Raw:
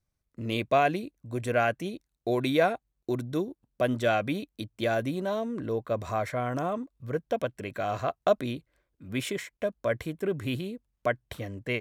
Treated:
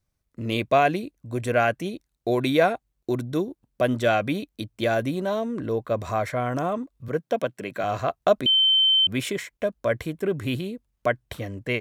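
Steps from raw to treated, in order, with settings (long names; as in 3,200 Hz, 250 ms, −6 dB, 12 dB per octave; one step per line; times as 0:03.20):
0:07.08–0:07.84: high-pass filter 130 Hz 24 dB per octave
0:08.46–0:09.07: beep over 3,090 Hz −19.5 dBFS
level +4 dB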